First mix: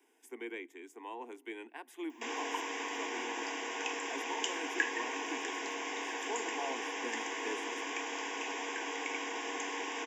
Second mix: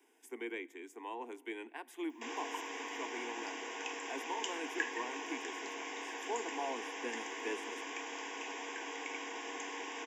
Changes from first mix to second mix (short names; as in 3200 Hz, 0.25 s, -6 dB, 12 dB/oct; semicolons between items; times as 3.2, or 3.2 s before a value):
speech: send +9.5 dB; background -4.5 dB